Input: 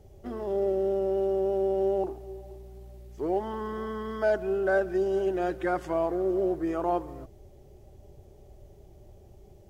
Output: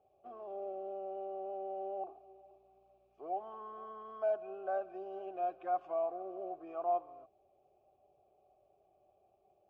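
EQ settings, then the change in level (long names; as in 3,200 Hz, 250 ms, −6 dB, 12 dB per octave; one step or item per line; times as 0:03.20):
formant filter a
high-frequency loss of the air 81 metres
−1.0 dB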